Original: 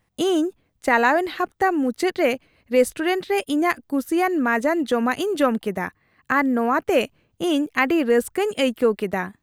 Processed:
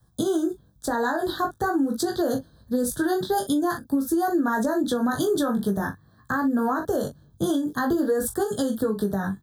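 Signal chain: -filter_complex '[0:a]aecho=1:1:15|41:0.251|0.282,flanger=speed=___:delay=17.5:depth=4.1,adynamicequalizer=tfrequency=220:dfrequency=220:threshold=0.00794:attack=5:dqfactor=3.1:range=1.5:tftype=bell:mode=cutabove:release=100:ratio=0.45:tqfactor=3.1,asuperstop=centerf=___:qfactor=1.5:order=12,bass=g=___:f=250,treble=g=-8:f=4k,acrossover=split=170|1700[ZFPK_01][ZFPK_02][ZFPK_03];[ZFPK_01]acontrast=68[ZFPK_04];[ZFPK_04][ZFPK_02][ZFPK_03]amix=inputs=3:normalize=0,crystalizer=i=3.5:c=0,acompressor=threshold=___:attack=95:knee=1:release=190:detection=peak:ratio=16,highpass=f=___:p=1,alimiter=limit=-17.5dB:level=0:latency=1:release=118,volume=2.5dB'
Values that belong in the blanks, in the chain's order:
0.47, 2400, 12, -23dB, 120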